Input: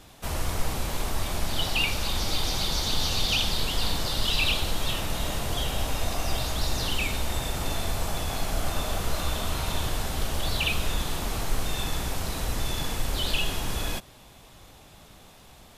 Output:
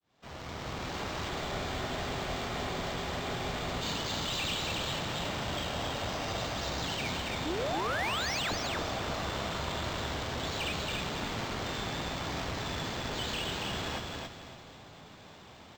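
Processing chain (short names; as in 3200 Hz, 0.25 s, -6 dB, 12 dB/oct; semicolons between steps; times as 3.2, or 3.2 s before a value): opening faded in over 0.99 s; HPF 100 Hz 12 dB/oct; notch 2600 Hz, Q 17; in parallel at -2 dB: compressor, threshold -39 dBFS, peak gain reduction 15.5 dB; on the sum: painted sound rise, 7.45–8.55, 280–12000 Hz -27 dBFS; tube stage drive 27 dB, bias 0.7; on a send: feedback echo 0.277 s, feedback 28%, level -3 dB; on the sum: Schroeder reverb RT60 3.1 s, combs from 28 ms, DRR 12 dB; spectral freeze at 1.32, 2.49 s; decimation joined by straight lines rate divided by 4×; gain -2 dB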